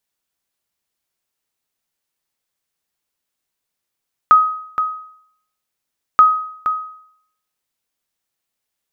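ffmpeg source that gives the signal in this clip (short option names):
-f lavfi -i "aevalsrc='0.75*(sin(2*PI*1260*mod(t,1.88))*exp(-6.91*mod(t,1.88)/0.66)+0.335*sin(2*PI*1260*max(mod(t,1.88)-0.47,0))*exp(-6.91*max(mod(t,1.88)-0.47,0)/0.66))':d=3.76:s=44100"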